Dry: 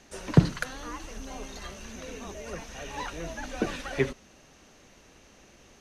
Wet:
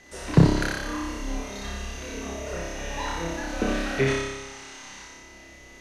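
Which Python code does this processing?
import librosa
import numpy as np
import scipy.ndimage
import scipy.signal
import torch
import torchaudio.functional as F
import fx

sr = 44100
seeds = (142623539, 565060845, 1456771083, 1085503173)

y = fx.spec_box(x, sr, start_s=4.07, length_s=0.97, low_hz=760.0, high_hz=9800.0, gain_db=10)
y = fx.room_flutter(y, sr, wall_m=5.1, rt60_s=1.1)
y = y + 10.0 ** (-53.0 / 20.0) * np.sin(2.0 * np.pi * 2000.0 * np.arange(len(y)) / sr)
y = y + 10.0 ** (-7.0 / 20.0) * np.pad(y, (int(86 * sr / 1000.0), 0))[:len(y)]
y = fx.doppler_dist(y, sr, depth_ms=0.14)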